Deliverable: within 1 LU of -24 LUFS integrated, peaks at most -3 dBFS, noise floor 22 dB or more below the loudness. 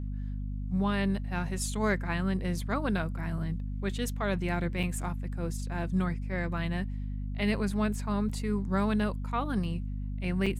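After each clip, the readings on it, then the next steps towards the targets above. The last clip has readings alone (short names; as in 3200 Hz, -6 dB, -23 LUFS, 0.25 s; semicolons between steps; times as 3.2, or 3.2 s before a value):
dropouts 3; longest dropout 5.5 ms; hum 50 Hz; harmonics up to 250 Hz; hum level -32 dBFS; loudness -32.0 LUFS; peak -16.5 dBFS; loudness target -24.0 LUFS
-> interpolate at 4.83/8.29/10.46, 5.5 ms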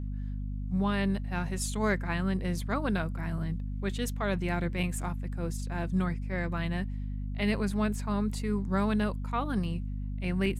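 dropouts 0; hum 50 Hz; harmonics up to 250 Hz; hum level -32 dBFS
-> notches 50/100/150/200/250 Hz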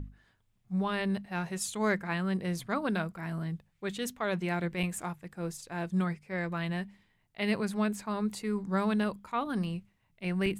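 hum none; loudness -33.0 LUFS; peak -18.0 dBFS; loudness target -24.0 LUFS
-> gain +9 dB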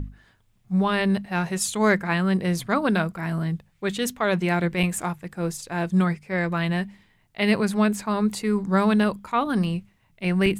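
loudness -24.0 LUFS; peak -9.0 dBFS; noise floor -63 dBFS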